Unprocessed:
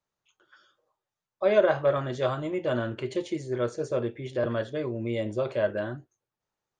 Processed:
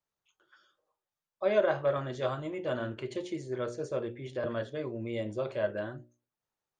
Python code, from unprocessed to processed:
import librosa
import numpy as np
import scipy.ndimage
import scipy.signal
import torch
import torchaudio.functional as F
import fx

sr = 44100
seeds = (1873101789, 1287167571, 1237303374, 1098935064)

y = fx.hum_notches(x, sr, base_hz=60, count=10)
y = y * librosa.db_to_amplitude(-4.5)